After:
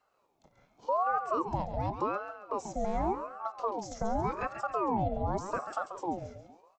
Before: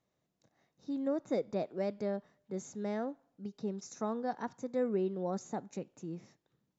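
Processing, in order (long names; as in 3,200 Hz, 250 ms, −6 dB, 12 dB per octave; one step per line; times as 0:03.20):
frequency shifter −80 Hz
in parallel at −2 dB: downward compressor, threshold −43 dBFS, peak gain reduction 14.5 dB
on the sum: hollow resonant body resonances 210/350/1,700/3,100 Hz, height 14 dB
brickwall limiter −21 dBFS, peak gain reduction 10 dB
on a send: repeating echo 137 ms, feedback 45%, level −9 dB
on the sum: ring modulator whose carrier an LFO sweeps 670 Hz, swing 50%, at 0.87 Hz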